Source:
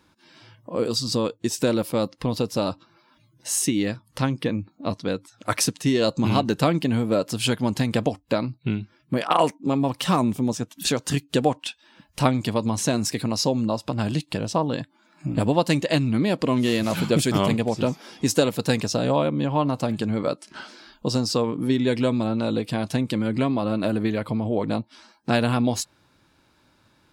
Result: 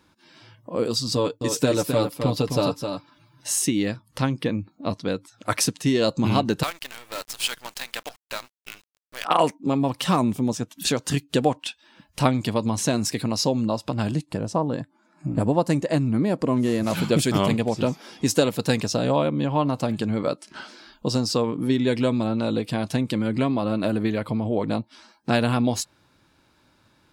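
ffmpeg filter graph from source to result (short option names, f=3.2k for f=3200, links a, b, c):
-filter_complex "[0:a]asettb=1/sr,asplit=3[a][b][c];[a]atrim=end=1.154[d];[b]atrim=start=1.15:end=3.53,asetpts=PTS-STARTPTS,afade=t=in:d=0.004:c=qsin,afade=t=out:st=2.376:d=0.004:c=qsin,aecho=1:1:6.9:0.61,atrim=end_sample=104958,aecho=1:1:261:0.473,atrim=end_sample=104958[e];[c]atrim=start=3.526[f];[d][e]acrossfade=d=0.004:c1=hsin:c2=qsin[g];[g][f]acrossfade=d=0.004:c1=qsin:c2=hsin,asettb=1/sr,asplit=3[h][i][j];[h]atrim=end=6.634[k];[i]atrim=start=6.63:end=9.25,asetpts=PTS-STARTPTS,afade=t=in:d=0.004:c=qsin,afade=t=out:st=2.616:d=0.004:c=qsin,highpass=1.2k,acrusher=bits=6:dc=4:mix=0:aa=0.000001[l];[j]atrim=start=9.246[m];[k][l]acrossfade=d=0.004:c1=hsin:c2=qsin[n];[n][m]acrossfade=d=0.004:c1=qsin:c2=hsin,asettb=1/sr,asplit=3[o][p][q];[o]atrim=end=14.114[r];[p]atrim=start=14.11:end=16.87,asetpts=PTS-STARTPTS,afade=t=in:d=0.004:c=qsin,afade=t=out:st=2.756:d=0.004:c=qsin,lowpass=11k,equalizer=f=3.3k:w=0.92:g=-11.5[s];[q]atrim=start=16.866[t];[r][s]acrossfade=d=0.004:c1=hsin:c2=qsin[u];[u][t]acrossfade=d=0.004:c1=qsin:c2=hsin"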